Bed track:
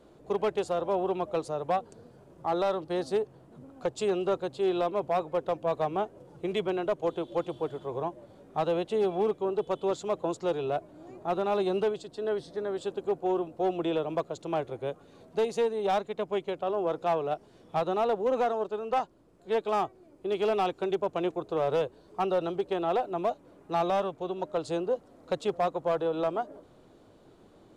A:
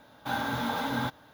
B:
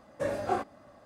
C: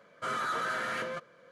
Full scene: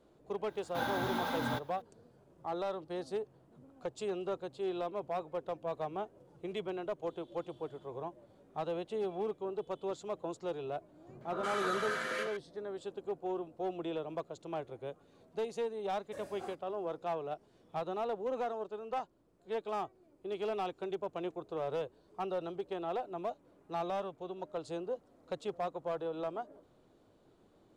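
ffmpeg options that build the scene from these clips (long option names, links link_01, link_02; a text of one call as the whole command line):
ffmpeg -i bed.wav -i cue0.wav -i cue1.wav -i cue2.wav -filter_complex "[0:a]volume=-9dB[link_01];[3:a]acrossover=split=180|1100[link_02][link_03][link_04];[link_03]adelay=230[link_05];[link_04]adelay=350[link_06];[link_02][link_05][link_06]amix=inputs=3:normalize=0[link_07];[2:a]highshelf=frequency=4700:gain=11.5[link_08];[1:a]atrim=end=1.33,asetpts=PTS-STARTPTS,volume=-5dB,afade=type=in:duration=0.004:curve=hsin,afade=type=out:start_time=1.326:duration=0.004:curve=hsin,adelay=490[link_09];[link_07]atrim=end=1.51,asetpts=PTS-STARTPTS,volume=-1.5dB,afade=type=in:duration=0.004:curve=hsin,afade=type=out:start_time=1.506:duration=0.004:curve=hsin,adelay=10860[link_10];[link_08]atrim=end=1.05,asetpts=PTS-STARTPTS,volume=-17.5dB,afade=type=in:duration=0.004:curve=hsin,afade=type=out:start_time=1.046:duration=0.004:curve=hsin,adelay=15920[link_11];[link_01][link_09][link_10][link_11]amix=inputs=4:normalize=0" out.wav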